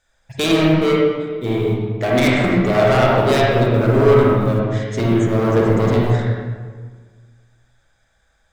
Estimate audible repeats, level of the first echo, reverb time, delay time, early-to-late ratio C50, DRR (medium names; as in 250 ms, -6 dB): no echo, no echo, 1.6 s, no echo, -2.5 dB, -4.5 dB